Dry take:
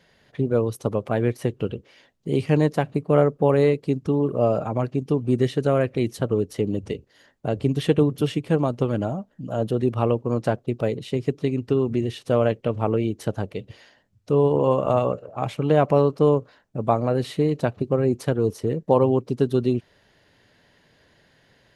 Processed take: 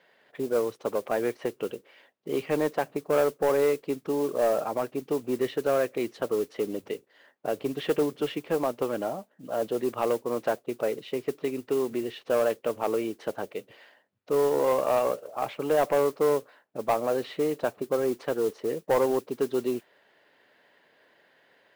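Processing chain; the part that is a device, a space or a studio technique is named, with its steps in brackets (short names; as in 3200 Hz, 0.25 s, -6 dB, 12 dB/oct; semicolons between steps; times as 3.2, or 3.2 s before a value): carbon microphone (BPF 400–2900 Hz; soft clip -16 dBFS, distortion -15 dB; modulation noise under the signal 21 dB)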